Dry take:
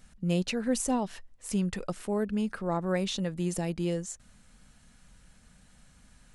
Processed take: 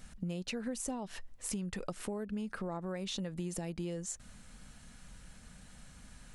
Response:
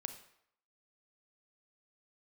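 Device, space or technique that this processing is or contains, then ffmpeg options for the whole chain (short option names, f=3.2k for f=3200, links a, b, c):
serial compression, peaks first: -af "acompressor=threshold=-35dB:ratio=5,acompressor=threshold=-42dB:ratio=2,volume=4dB"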